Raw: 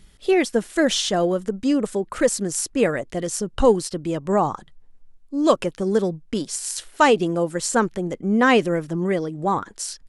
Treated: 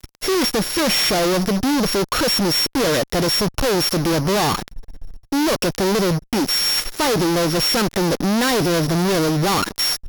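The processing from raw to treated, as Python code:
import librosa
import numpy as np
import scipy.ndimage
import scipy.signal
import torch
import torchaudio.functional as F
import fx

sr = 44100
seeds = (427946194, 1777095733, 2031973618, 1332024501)

y = np.r_[np.sort(x[:len(x) // 8 * 8].reshape(-1, 8), axis=1).ravel(), x[len(x) // 8 * 8:]]
y = fx.fuzz(y, sr, gain_db=42.0, gate_db=-44.0)
y = F.gain(torch.from_numpy(y), -3.5).numpy()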